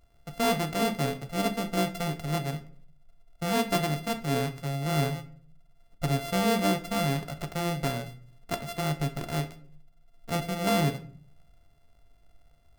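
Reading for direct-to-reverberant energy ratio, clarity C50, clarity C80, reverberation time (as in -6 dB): 7.0 dB, 14.0 dB, 18.5 dB, 0.50 s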